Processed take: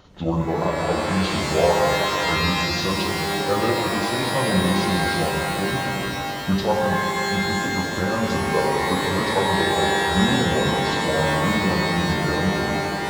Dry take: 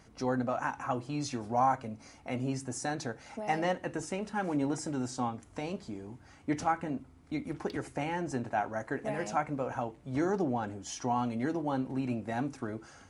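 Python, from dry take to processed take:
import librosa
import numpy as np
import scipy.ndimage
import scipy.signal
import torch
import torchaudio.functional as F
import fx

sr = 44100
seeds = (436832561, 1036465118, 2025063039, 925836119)

y = fx.pitch_heads(x, sr, semitones=-7.5)
y = fx.hum_notches(y, sr, base_hz=50, count=8)
y = fx.rev_shimmer(y, sr, seeds[0], rt60_s=3.2, semitones=12, shimmer_db=-2, drr_db=0.5)
y = y * 10.0 ** (9.0 / 20.0)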